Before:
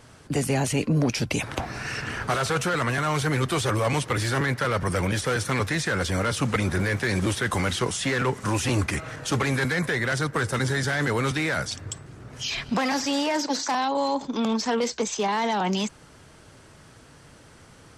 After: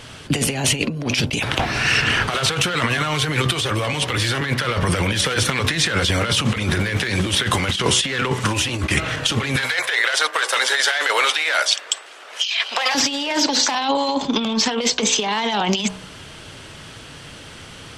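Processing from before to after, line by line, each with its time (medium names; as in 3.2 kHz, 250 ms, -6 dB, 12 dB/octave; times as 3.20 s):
9.56–12.95 s: high-pass 550 Hz 24 dB/octave
whole clip: peaking EQ 3.1 kHz +10.5 dB 0.95 oct; de-hum 62.69 Hz, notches 19; compressor with a negative ratio -26 dBFS, ratio -0.5; trim +7 dB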